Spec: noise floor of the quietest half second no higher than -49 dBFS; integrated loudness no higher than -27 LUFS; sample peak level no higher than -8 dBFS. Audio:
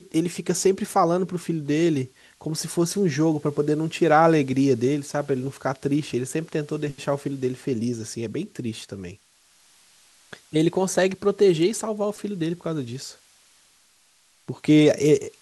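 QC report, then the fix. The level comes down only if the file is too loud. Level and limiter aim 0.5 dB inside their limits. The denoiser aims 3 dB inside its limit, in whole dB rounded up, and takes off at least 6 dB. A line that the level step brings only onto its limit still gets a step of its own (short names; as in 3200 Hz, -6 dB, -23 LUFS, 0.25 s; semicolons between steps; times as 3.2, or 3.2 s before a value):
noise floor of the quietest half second -60 dBFS: OK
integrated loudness -23.5 LUFS: fail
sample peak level -5.0 dBFS: fail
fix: gain -4 dB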